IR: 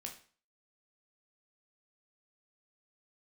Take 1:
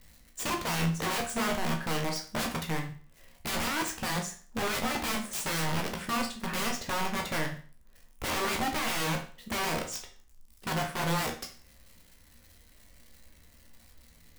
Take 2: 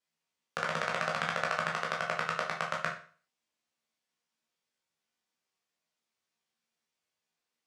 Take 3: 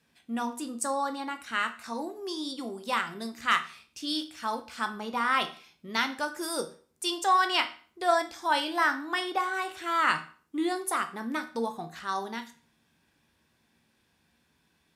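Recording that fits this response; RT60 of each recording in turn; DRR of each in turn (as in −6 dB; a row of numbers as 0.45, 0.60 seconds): 1; 0.40, 0.40, 0.40 seconds; 1.5, −3.0, 6.5 decibels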